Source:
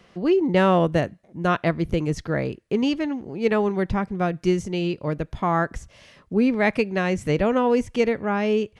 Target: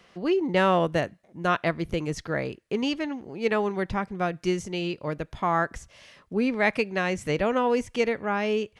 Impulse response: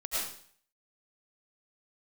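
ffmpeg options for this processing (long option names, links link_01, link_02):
-af "lowshelf=frequency=470:gain=-7.5"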